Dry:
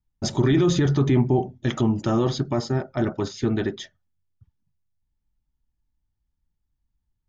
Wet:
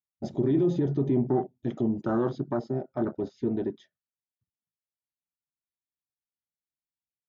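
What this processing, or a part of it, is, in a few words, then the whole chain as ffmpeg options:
over-cleaned archive recording: -af "highpass=170,lowpass=5.2k,afwtdn=0.0447,volume=-3.5dB"

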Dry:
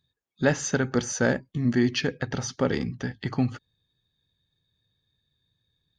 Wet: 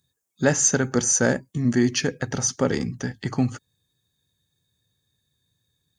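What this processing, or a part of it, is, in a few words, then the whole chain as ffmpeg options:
budget condenser microphone: -af "highpass=68,highshelf=f=5.4k:t=q:w=1.5:g=11.5,volume=2.5dB"

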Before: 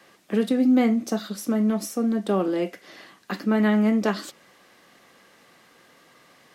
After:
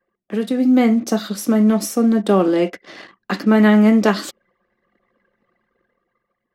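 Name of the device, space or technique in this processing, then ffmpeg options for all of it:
voice memo with heavy noise removal: -filter_complex "[0:a]asettb=1/sr,asplit=3[a][b][c];[a]atrim=end=2.344[d];[b]atrim=start=2.34:end=3.38,asetpts=PTS-STARTPTS,afade=t=in:d=0.004:c=qsin,afade=t=out:st=1.036:d=0.004:c=qsin,lowpass=11k[e];[c]atrim=start=3.376[f];[d][e]acrossfade=d=0.004:c1=hsin:c2=qsin[g];[g][f]acrossfade=d=0.004:c1=qsin:c2=hsin,anlmdn=0.0251,dynaudnorm=f=110:g=13:m=9dB"

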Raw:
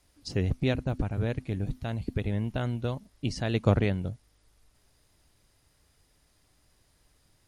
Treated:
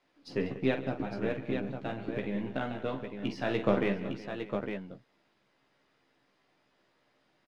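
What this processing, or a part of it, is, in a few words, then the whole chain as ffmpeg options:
crystal radio: -filter_complex "[0:a]highpass=250,lowpass=3.2k,highpass=f=260:p=1,bass=f=250:g=7,treble=f=4k:g=-4,asplit=2[a][b];[b]adelay=15,volume=-5dB[c];[a][c]amix=inputs=2:normalize=0,aeval=exprs='if(lt(val(0),0),0.708*val(0),val(0))':c=same,aecho=1:1:45|139|191|371|610|857:0.355|0.133|0.158|0.126|0.106|0.473,volume=1dB"

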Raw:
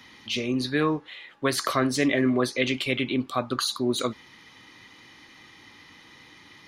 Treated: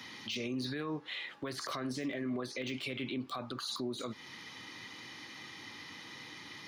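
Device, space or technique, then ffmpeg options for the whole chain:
broadcast voice chain: -af "highpass=f=93:w=0.5412,highpass=f=93:w=1.3066,deesser=0.85,acompressor=threshold=-32dB:ratio=4,equalizer=f=5k:t=o:w=0.78:g=3.5,alimiter=level_in=6.5dB:limit=-24dB:level=0:latency=1:release=44,volume=-6.5dB,volume=1.5dB"

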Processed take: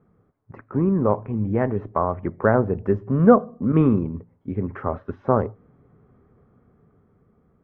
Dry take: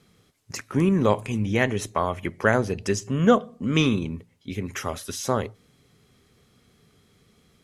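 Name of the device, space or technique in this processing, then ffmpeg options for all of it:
action camera in a waterproof case: -filter_complex "[0:a]asettb=1/sr,asplit=3[a][b][c];[a]atrim=end=3.724[d];[b]atrim=start=3.72:end=4.15,asetpts=PTS-STARTPTS,afade=t=in:d=0.004:c=qsin,afade=t=out:st=0.426:d=0.004:c=qsin,agate=range=-33dB:threshold=-25dB:ratio=3:detection=peak[e];[c]atrim=start=4.146[f];[d][e]acrossfade=d=0.004:c1=hsin:c2=qsin[g];[g][f]acrossfade=d=0.004:c1=qsin:c2=hsin,lowpass=f=1.3k:w=0.5412,lowpass=f=1.3k:w=1.3066,dynaudnorm=f=380:g=9:m=7dB" -ar 48000 -c:a aac -b:a 64k

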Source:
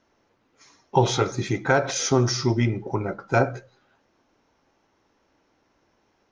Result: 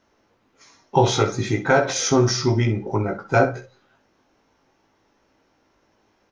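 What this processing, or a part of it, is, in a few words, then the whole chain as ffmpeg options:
slapback doubling: -filter_complex "[0:a]asplit=3[a][b][c];[b]adelay=19,volume=-5dB[d];[c]adelay=65,volume=-12dB[e];[a][d][e]amix=inputs=3:normalize=0,volume=1.5dB"

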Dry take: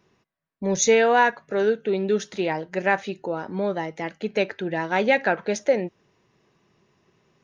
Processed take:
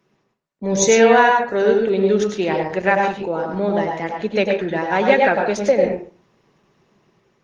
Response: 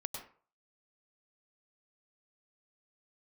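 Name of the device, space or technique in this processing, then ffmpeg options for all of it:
far-field microphone of a smart speaker: -filter_complex "[0:a]asettb=1/sr,asplit=3[a][b][c];[a]atrim=end=2.644[d];[b]atrim=start=2.64:end=3.78,asetpts=PTS-STARTPTS,afade=t=in:d=0.004:c=qsin,afade=t=out:st=1.136:d=0.004:c=qsin,highpass=58[e];[c]atrim=start=3.776[f];[d][e]acrossfade=d=0.004:c1=hsin:c2=qsin[g];[g][f]acrossfade=d=0.004:c1=qsin:c2=hsin[h];[1:a]atrim=start_sample=2205[i];[h][i]afir=irnorm=-1:irlink=0,highpass=f=120:w=0.5412,highpass=f=120:w=1.3066,dynaudnorm=f=470:g=3:m=4.5dB,volume=2.5dB" -ar 48000 -c:a libopus -b:a 20k

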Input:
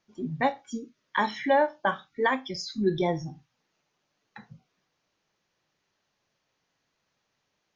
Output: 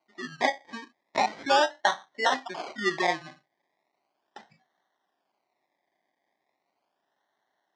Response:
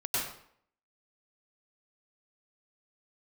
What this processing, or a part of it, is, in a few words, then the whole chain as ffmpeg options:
circuit-bent sampling toy: -af "acrusher=samples=25:mix=1:aa=0.000001:lfo=1:lforange=15:lforate=0.37,highpass=440,equalizer=f=480:t=q:w=4:g=-10,equalizer=f=740:t=q:w=4:g=4,equalizer=f=1.3k:t=q:w=4:g=-8,equalizer=f=1.9k:t=q:w=4:g=8,equalizer=f=2.7k:t=q:w=4:g=-7,lowpass=f=5.5k:w=0.5412,lowpass=f=5.5k:w=1.3066,volume=3dB"

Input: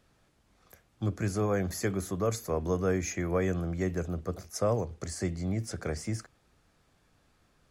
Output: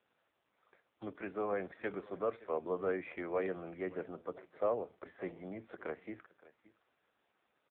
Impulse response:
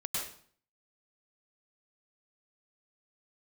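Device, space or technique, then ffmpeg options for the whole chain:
satellite phone: -af "highpass=380,lowpass=3.4k,aecho=1:1:569:0.1,volume=-2.5dB" -ar 8000 -c:a libopencore_amrnb -b:a 5900

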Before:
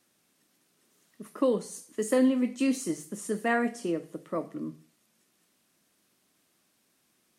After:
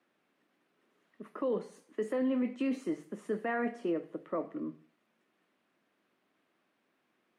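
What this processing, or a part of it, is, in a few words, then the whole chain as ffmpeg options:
DJ mixer with the lows and highs turned down: -filter_complex "[0:a]acrossover=split=220 2900:gain=0.251 1 0.0708[a][b][c];[a][b][c]amix=inputs=3:normalize=0,alimiter=level_in=0.5dB:limit=-24dB:level=0:latency=1:release=14,volume=-0.5dB"

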